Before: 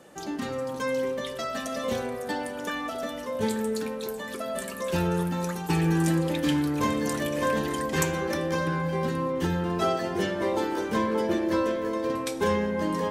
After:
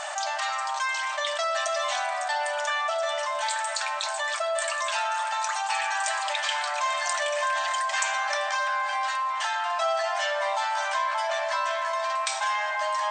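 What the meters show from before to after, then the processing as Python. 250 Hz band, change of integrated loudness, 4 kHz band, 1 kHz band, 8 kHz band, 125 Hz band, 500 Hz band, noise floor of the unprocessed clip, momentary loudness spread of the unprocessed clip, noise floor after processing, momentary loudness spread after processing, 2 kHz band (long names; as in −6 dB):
below −40 dB, +1.0 dB, +7.0 dB, +7.0 dB, +6.0 dB, below −40 dB, −3.5 dB, −36 dBFS, 7 LU, −30 dBFS, 2 LU, +7.0 dB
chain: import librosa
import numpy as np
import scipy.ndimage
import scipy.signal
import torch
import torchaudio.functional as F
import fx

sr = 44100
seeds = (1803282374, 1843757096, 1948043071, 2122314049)

y = fx.brickwall_bandpass(x, sr, low_hz=580.0, high_hz=8800.0)
y = fx.env_flatten(y, sr, amount_pct=70)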